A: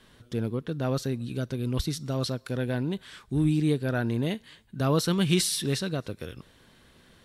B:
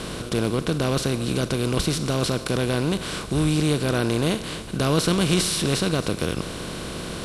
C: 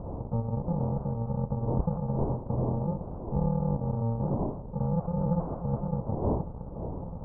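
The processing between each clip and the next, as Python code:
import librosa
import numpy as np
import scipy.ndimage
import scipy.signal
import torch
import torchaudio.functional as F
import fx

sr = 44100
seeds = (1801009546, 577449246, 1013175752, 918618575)

y1 = fx.bin_compress(x, sr, power=0.4)
y1 = scipy.signal.sosfilt(scipy.signal.butter(6, 12000.0, 'lowpass', fs=sr, output='sos'), y1)
y2 = fx.bit_reversed(y1, sr, seeds[0], block=128)
y2 = fx.dmg_wind(y2, sr, seeds[1], corner_hz=490.0, level_db=-37.0)
y2 = scipy.signal.sosfilt(scipy.signal.cheby1(5, 1.0, 1000.0, 'lowpass', fs=sr, output='sos'), y2)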